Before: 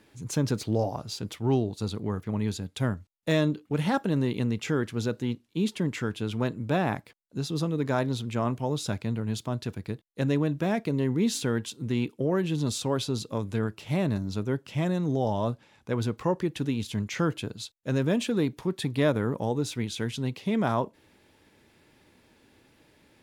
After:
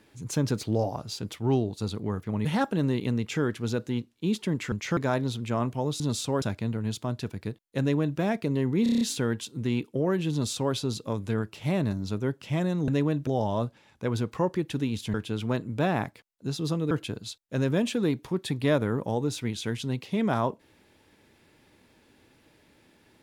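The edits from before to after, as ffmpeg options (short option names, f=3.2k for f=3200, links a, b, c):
-filter_complex "[0:a]asplit=16[a][b][c][d][e][f][g][h][i][j][k][l][m][n][o][p];[a]atrim=end=2.452[q];[b]atrim=start=3.778:end=6.052[r];[c]atrim=start=16.998:end=17.252[s];[d]atrim=start=7.818:end=8.852[t];[e]atrim=start=12.568:end=12.992[u];[f]atrim=start=8.848:end=11.292[v];[g]atrim=start=11.258:end=11.292[w];[h]atrim=start=11.258:end=11.292[x];[i]atrim=start=11.258:end=11.292[y];[j]atrim=start=11.258:end=11.292[z];[k]atrim=start=11.258:end=11.292[aa];[l]atrim=start=11.258:end=15.132[ab];[m]atrim=start=10.228:end=10.622[ac];[n]atrim=start=15.128:end=17.002[ad];[o]atrim=start=6.048:end=7.822[ae];[p]atrim=start=17.248[af];[q][r]acrossfade=d=0.004:c1=hsin:c2=hsin[ag];[ag][s]acrossfade=d=0.004:c1=hsin:c2=hsin[ah];[ah][t]acrossfade=d=0.004:c1=hsin:c2=hsin[ai];[ai][u]acrossfade=d=0.004:c1=hsin:c2=hsin[aj];[aj][v]acrossfade=d=0.004:c1=hsin:c2=hsin[ak];[ak][w]acrossfade=d=0.004:c1=hsin:c2=hsin[al];[al][x]acrossfade=d=0.004:c1=hsin:c2=hsin[am];[am][y]acrossfade=d=0.004:c1=hsin:c2=hsin[an];[an][z]acrossfade=d=0.004:c1=hsin:c2=hsin[ao];[ao][aa]acrossfade=d=0.004:c1=hsin:c2=hsin[ap];[ap][ab]acrossfade=d=0.004:c1=hsin:c2=hsin[aq];[aq][ac]acrossfade=d=0.004:c1=hsin:c2=hsin[ar];[ar][ad]acrossfade=d=0.004:c1=hsin:c2=hsin[as];[as][ae]acrossfade=d=0.004:c1=hsin:c2=hsin[at];[at][af]acrossfade=d=0.004:c1=hsin:c2=hsin"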